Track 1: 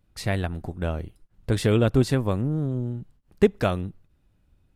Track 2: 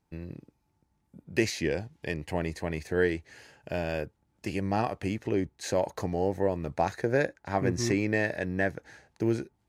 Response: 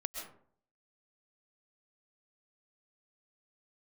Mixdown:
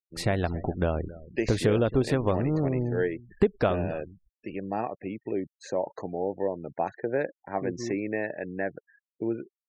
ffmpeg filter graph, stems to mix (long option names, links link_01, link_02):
-filter_complex "[0:a]agate=range=-33dB:threshold=-56dB:ratio=3:detection=peak,adynamicequalizer=threshold=0.02:dfrequency=190:dqfactor=0.83:tfrequency=190:tqfactor=0.83:attack=5:release=100:ratio=0.375:range=3:mode=cutabove:tftype=bell,acompressor=threshold=-25dB:ratio=6,volume=0.5dB,asplit=2[link_01][link_02];[link_02]volume=-18dB[link_03];[1:a]highpass=130,volume=-8dB[link_04];[link_03]aecho=0:1:272:1[link_05];[link_01][link_04][link_05]amix=inputs=3:normalize=0,afftfilt=real='re*gte(hypot(re,im),0.00562)':imag='im*gte(hypot(re,im),0.00562)':win_size=1024:overlap=0.75,equalizer=frequency=520:width=0.38:gain=7"